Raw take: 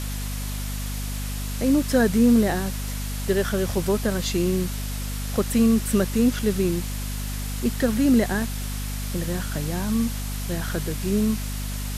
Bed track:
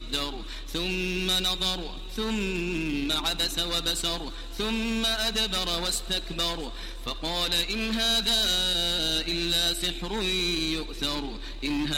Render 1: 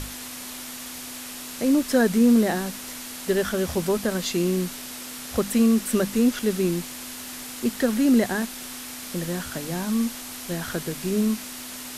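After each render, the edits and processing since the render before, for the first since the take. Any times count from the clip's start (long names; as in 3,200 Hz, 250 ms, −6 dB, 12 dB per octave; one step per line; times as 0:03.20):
mains-hum notches 50/100/150/200 Hz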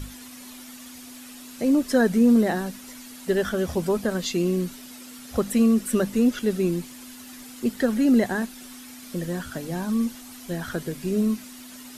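broadband denoise 10 dB, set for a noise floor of −37 dBFS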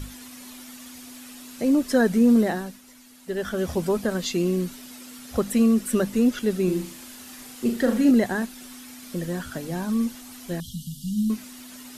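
0:02.42–0:03.67: duck −8.5 dB, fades 0.40 s
0:06.64–0:08.11: flutter between parallel walls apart 6.6 metres, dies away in 0.39 s
0:10.60–0:11.30: linear-phase brick-wall band-stop 240–2,800 Hz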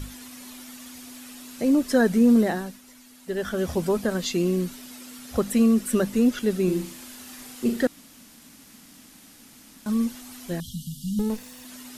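0:07.87–0:09.86: fill with room tone
0:11.19–0:11.65: lower of the sound and its delayed copy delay 1.1 ms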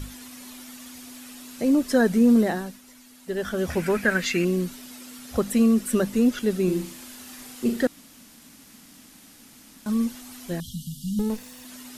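0:03.70–0:04.45: flat-topped bell 1,900 Hz +13.5 dB 1.1 octaves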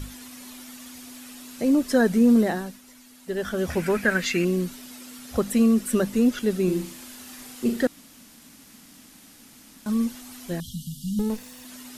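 no processing that can be heard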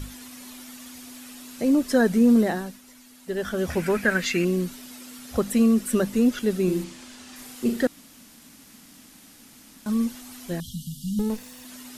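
0:06.84–0:07.36: low-pass filter 7,400 Hz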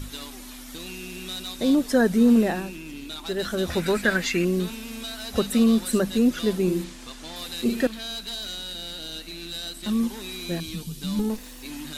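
mix in bed track −9.5 dB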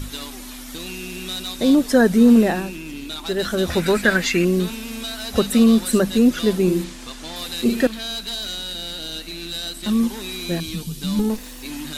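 level +5 dB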